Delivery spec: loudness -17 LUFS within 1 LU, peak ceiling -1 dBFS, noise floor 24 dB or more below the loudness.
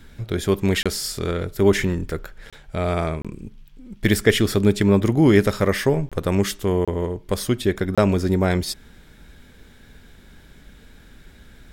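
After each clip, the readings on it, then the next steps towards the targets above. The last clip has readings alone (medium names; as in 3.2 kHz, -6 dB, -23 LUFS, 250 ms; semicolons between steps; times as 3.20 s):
dropouts 6; longest dropout 26 ms; loudness -21.0 LUFS; peak level -2.5 dBFS; loudness target -17.0 LUFS
-> interpolate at 0.83/2.50/3.22/6.09/6.85/7.95 s, 26 ms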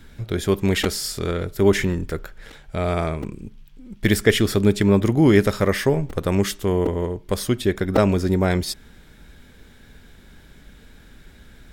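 dropouts 0; loudness -21.0 LUFS; peak level -2.5 dBFS; loudness target -17.0 LUFS
-> trim +4 dB; peak limiter -1 dBFS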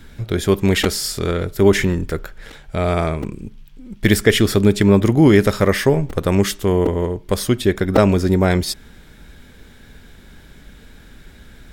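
loudness -17.0 LUFS; peak level -1.0 dBFS; noise floor -44 dBFS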